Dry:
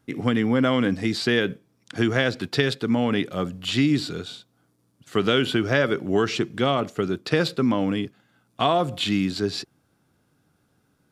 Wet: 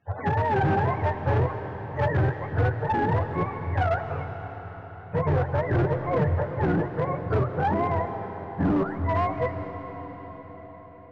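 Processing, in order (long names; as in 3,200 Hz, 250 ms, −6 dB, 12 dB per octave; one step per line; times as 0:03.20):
frequency axis turned over on the octave scale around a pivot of 450 Hz
low-shelf EQ 110 Hz +7.5 dB
mains-hum notches 60/120 Hz
hard clipping −19 dBFS, distortion −10 dB
high-frequency loss of the air 110 metres
convolution reverb RT60 5.7 s, pre-delay 100 ms, DRR 7.5 dB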